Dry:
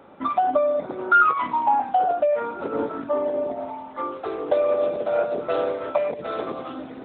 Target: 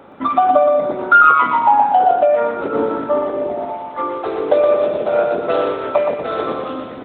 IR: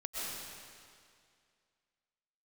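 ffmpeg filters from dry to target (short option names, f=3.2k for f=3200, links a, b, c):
-af "aecho=1:1:120|240|360|480|600:0.562|0.208|0.077|0.0285|0.0105,volume=6.5dB"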